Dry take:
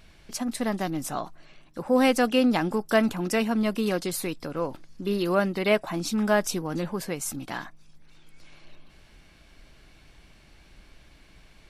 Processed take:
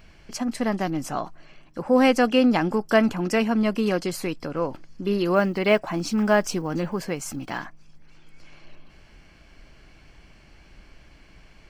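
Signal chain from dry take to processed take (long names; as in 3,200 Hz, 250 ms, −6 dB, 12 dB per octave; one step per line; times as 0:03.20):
0:05.34–0:07.63: one scale factor per block 7 bits
parametric band 11,000 Hz −11.5 dB 0.79 octaves
notch filter 3,700 Hz, Q 5.7
level +3 dB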